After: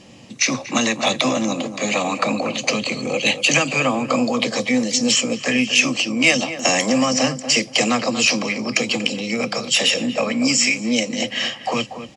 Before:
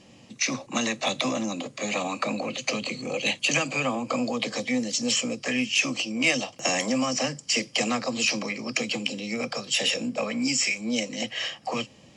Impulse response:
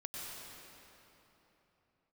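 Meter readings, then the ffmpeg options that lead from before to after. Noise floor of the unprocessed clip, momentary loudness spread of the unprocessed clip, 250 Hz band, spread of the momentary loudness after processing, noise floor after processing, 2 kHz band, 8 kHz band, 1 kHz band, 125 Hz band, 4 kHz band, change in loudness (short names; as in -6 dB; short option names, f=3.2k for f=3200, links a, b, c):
-53 dBFS, 6 LU, +8.0 dB, 6 LU, -38 dBFS, +7.5 dB, +7.5 dB, +8.0 dB, +8.0 dB, +7.5 dB, +7.5 dB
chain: -filter_complex "[0:a]asplit=2[a][b];[b]adelay=237,lowpass=f=1.5k:p=1,volume=-10dB,asplit=2[c][d];[d]adelay=237,lowpass=f=1.5k:p=1,volume=0.23,asplit=2[e][f];[f]adelay=237,lowpass=f=1.5k:p=1,volume=0.23[g];[a][c][e][g]amix=inputs=4:normalize=0,volume=7.5dB"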